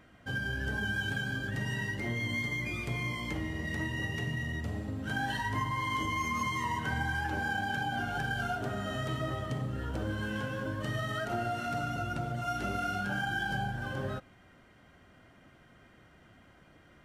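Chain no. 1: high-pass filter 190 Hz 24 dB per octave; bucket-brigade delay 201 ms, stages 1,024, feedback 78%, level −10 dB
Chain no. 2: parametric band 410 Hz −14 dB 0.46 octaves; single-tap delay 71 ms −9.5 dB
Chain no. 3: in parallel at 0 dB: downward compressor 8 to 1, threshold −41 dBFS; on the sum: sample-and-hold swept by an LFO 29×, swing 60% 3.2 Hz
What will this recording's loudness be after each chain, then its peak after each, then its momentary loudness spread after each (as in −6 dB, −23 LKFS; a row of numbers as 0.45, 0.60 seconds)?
−34.5, −34.0, −32.5 LKFS; −21.5, −20.5, −19.5 dBFS; 7, 5, 3 LU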